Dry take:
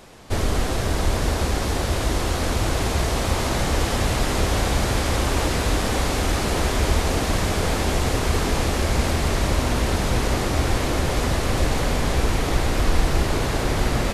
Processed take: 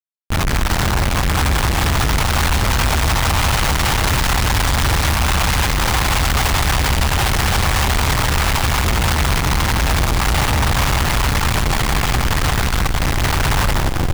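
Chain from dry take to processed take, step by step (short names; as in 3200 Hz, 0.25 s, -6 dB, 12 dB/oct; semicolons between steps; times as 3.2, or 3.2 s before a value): tape stop at the end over 0.55 s; Chebyshev band-stop 150–790 Hz, order 4; Schmitt trigger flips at -33 dBFS; split-band echo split 580 Hz, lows 92 ms, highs 0.184 s, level -10.5 dB; gain +6 dB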